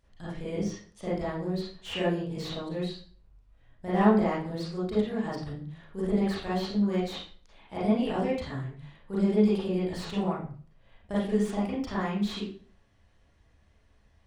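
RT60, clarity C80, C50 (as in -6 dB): 0.45 s, 6.0 dB, -0.5 dB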